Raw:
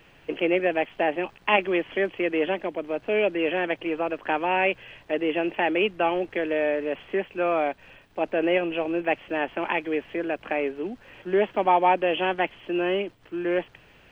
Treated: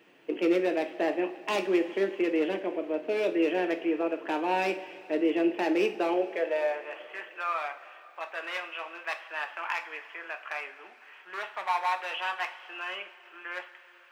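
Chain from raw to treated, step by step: overload inside the chain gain 18 dB; high-pass sweep 290 Hz -> 1.2 kHz, 5.88–7.02 s; two-slope reverb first 0.33 s, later 3.1 s, from -17 dB, DRR 4.5 dB; trim -7 dB

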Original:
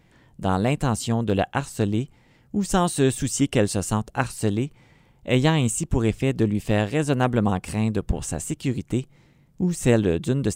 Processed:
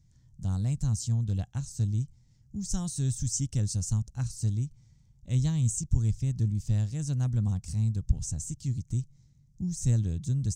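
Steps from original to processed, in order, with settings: FFT filter 120 Hz 0 dB, 400 Hz -26 dB, 2.8 kHz -24 dB, 6.1 kHz +1 dB, 11 kHz -15 dB

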